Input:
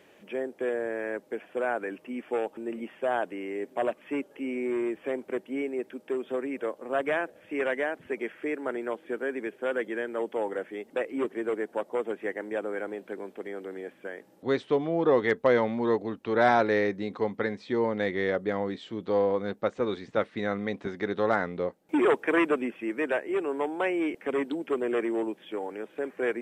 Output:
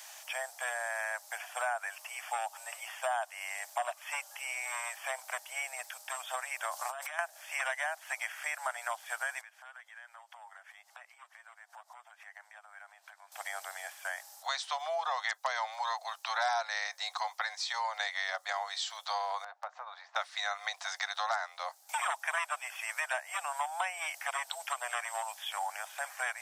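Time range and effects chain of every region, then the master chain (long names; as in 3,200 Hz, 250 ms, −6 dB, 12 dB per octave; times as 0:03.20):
0:06.70–0:07.19: high-pass filter 620 Hz 6 dB per octave + compressor whose output falls as the input rises −41 dBFS
0:09.41–0:13.32: downward compressor 5 to 1, threshold −44 dBFS + high-pass filter 1,300 Hz + spectral tilt −4.5 dB per octave
0:19.44–0:20.16: low-pass filter 1,300 Hz + downward compressor 4 to 1, threshold −36 dBFS
whole clip: Butterworth high-pass 680 Hz 72 dB per octave; high shelf with overshoot 3,800 Hz +12.5 dB, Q 1.5; downward compressor 4 to 1, threshold −41 dBFS; level +9 dB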